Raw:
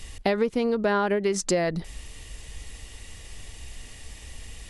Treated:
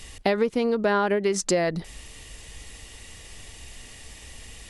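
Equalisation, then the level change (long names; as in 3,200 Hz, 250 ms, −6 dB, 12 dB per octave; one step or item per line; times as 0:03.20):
low-shelf EQ 100 Hz −7 dB
+1.5 dB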